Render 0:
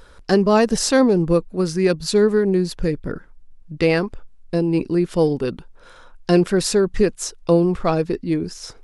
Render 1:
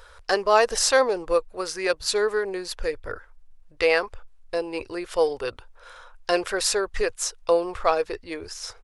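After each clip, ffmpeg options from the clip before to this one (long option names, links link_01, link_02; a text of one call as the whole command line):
ffmpeg -i in.wav -af "firequalizer=gain_entry='entry(100,0);entry(150,-25);entry(480,3);entry(1100,7);entry(4100,5)':delay=0.05:min_phase=1,volume=-5dB" out.wav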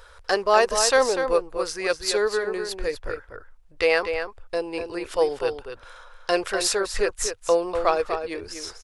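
ffmpeg -i in.wav -filter_complex "[0:a]asplit=2[link_01][link_02];[link_02]adelay=244.9,volume=-7dB,highshelf=frequency=4000:gain=-5.51[link_03];[link_01][link_03]amix=inputs=2:normalize=0" out.wav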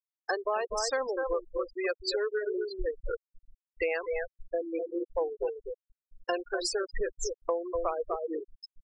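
ffmpeg -i in.wav -af "afftfilt=real='re*gte(hypot(re,im),0.126)':imag='im*gte(hypot(re,im),0.126)':win_size=1024:overlap=0.75,acompressor=threshold=-28dB:ratio=5" out.wav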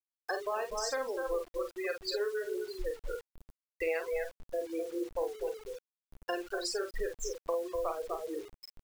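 ffmpeg -i in.wav -filter_complex "[0:a]asplit=2[link_01][link_02];[link_02]aecho=0:1:37|49:0.282|0.398[link_03];[link_01][link_03]amix=inputs=2:normalize=0,acrusher=bits=7:mix=0:aa=0.000001,volume=-4.5dB" out.wav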